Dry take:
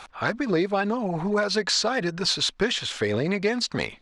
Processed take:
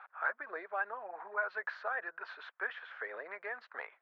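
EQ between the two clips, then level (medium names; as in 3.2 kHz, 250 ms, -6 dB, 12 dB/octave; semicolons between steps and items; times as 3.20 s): high-pass 560 Hz 24 dB/octave; four-pole ladder low-pass 1.8 kHz, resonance 55%; -3.5 dB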